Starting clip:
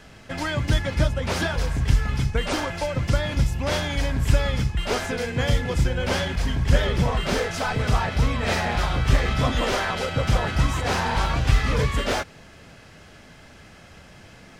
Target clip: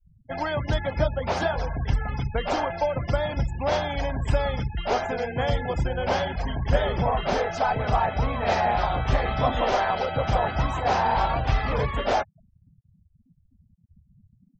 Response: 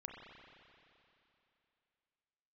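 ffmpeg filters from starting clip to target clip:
-af "afftfilt=real='re*gte(hypot(re,im),0.0251)':imag='im*gte(hypot(re,im),0.0251)':win_size=1024:overlap=0.75,equalizer=f=750:w=1.5:g=12.5,volume=-5dB"

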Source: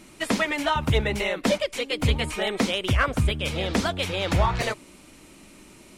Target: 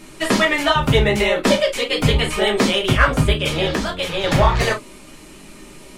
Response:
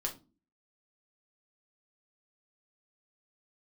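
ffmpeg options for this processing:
-filter_complex "[0:a]asettb=1/sr,asplit=3[a][b][c];[a]atrim=end=3.654[d];[b]atrim=start=3.65:end=4.24,asetpts=PTS-STARTPTS,afade=t=in:d=0.004:c=qsin,afade=t=out:st=0.586:d=0.004:c=qsin,acrossover=split=130[e][f];[f]acompressor=threshold=-27dB:ratio=6[g];[e][g]amix=inputs=2:normalize=0[h];[c]atrim=start=4.236[i];[d][h]acrossfade=d=0.004:c1=hsin:c2=qsin[j];[j][i]acrossfade=d=0.004:c1=qsin:c2=hsin[k];[1:a]atrim=start_sample=2205,atrim=end_sample=3087[l];[k][l]afir=irnorm=-1:irlink=0,volume=6.5dB"

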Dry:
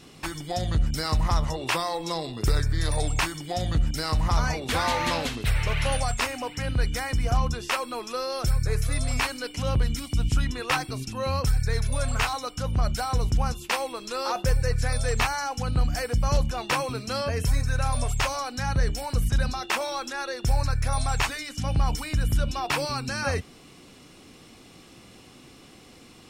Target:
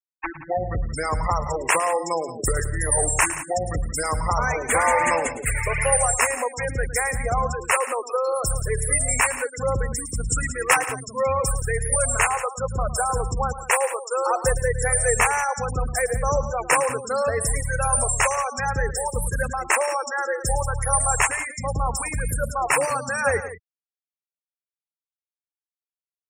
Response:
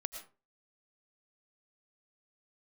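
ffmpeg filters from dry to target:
-filter_complex "[0:a]equalizer=f=500:t=o:w=1:g=10,equalizer=f=1k:t=o:w=1:g=6,equalizer=f=2k:t=o:w=1:g=12,equalizer=f=4k:t=o:w=1:g=-7,equalizer=f=8k:t=o:w=1:g=9,acrossover=split=150|7400[a][b][c];[c]dynaudnorm=f=130:g=17:m=15dB[d];[a][b][d]amix=inputs=3:normalize=0,asettb=1/sr,asplit=3[e][f][g];[e]atrim=end=10.084[h];[f]atrim=start=10.08:end=10.74,asetpts=PTS-STARTPTS,afade=t=in:d=0.004:c=qsin,afade=t=out:st=0.656:d=0.004:c=qsin,highshelf=f=3.1k:g=3.5[i];[g]atrim=start=10.736[j];[h][i]acrossfade=d=0.004:c1=hsin:c2=qsin[k];[k][j]acrossfade=d=0.004:c1=qsin:c2=hsin,afftfilt=real='re*gte(hypot(re,im),0.141)':imag='im*gte(hypot(re,im),0.141)':win_size=1024:overlap=0.75,aecho=1:1:109|175:0.188|0.2,volume=-3.5dB"

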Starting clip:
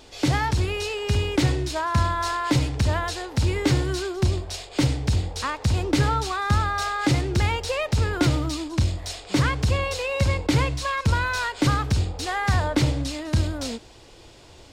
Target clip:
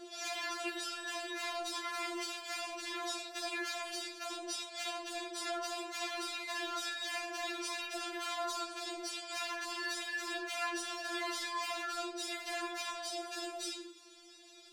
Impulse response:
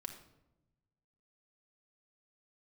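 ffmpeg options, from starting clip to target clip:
-filter_complex "[0:a]asetnsamples=n=441:p=0,asendcmd='13.11 equalizer g -9.5',equalizer=f=490:w=0.47:g=2.5[a];[1:a]atrim=start_sample=2205,afade=t=out:st=0.3:d=0.01,atrim=end_sample=13671[b];[a][b]afir=irnorm=-1:irlink=0,aeval=exprs='0.376*(cos(1*acos(clip(val(0)/0.376,-1,1)))-cos(1*PI/2))+0.0335*(cos(6*acos(clip(val(0)/0.376,-1,1)))-cos(6*PI/2))':c=same,volume=21.5dB,asoftclip=hard,volume=-21.5dB,afreqshift=87,afftfilt=real='re*lt(hypot(re,im),0.0891)':imag='im*lt(hypot(re,im),0.0891)':win_size=1024:overlap=0.75,alimiter=level_in=3dB:limit=-24dB:level=0:latency=1:release=34,volume=-3dB,highshelf=f=6k:g=-2.5,bandreject=f=96.45:t=h:w=4,bandreject=f=192.9:t=h:w=4,bandreject=f=289.35:t=h:w=4,bandreject=f=385.8:t=h:w=4,bandreject=f=482.25:t=h:w=4,bandreject=f=578.7:t=h:w=4,afftfilt=real='re*4*eq(mod(b,16),0)':imag='im*4*eq(mod(b,16),0)':win_size=2048:overlap=0.75,volume=1.5dB"

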